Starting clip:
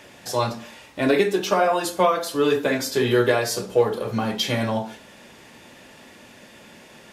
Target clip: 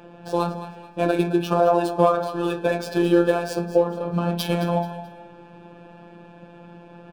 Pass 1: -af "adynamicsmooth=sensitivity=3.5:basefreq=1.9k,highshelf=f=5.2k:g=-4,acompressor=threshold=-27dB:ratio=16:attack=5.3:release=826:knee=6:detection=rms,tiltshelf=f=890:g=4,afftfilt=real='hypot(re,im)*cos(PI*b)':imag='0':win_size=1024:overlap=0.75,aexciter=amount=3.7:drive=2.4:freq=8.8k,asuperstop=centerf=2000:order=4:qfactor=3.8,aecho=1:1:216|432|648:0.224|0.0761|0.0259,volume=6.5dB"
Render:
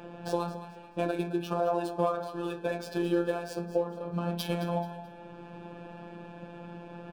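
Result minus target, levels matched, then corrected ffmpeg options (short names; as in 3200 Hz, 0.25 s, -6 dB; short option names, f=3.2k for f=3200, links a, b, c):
compressor: peak gain reduction +10.5 dB
-af "adynamicsmooth=sensitivity=3.5:basefreq=1.9k,highshelf=f=5.2k:g=-4,acompressor=threshold=-15.5dB:ratio=16:attack=5.3:release=826:knee=6:detection=rms,tiltshelf=f=890:g=4,afftfilt=real='hypot(re,im)*cos(PI*b)':imag='0':win_size=1024:overlap=0.75,aexciter=amount=3.7:drive=2.4:freq=8.8k,asuperstop=centerf=2000:order=4:qfactor=3.8,aecho=1:1:216|432|648:0.224|0.0761|0.0259,volume=6.5dB"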